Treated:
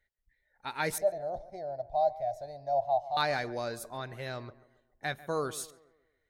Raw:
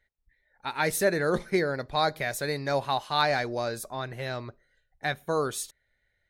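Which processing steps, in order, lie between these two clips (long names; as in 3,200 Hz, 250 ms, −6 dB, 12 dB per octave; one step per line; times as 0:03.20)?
0:00.98–0:03.17: drawn EQ curve 100 Hz 0 dB, 180 Hz −19 dB, 470 Hz −18 dB, 670 Hz +14 dB, 1,200 Hz −26 dB, 2,400 Hz −26 dB, 5,500 Hz −14 dB, 9,000 Hz −25 dB
on a send: tape delay 140 ms, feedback 48%, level −16 dB, low-pass 1,500 Hz
on the sum: level −5 dB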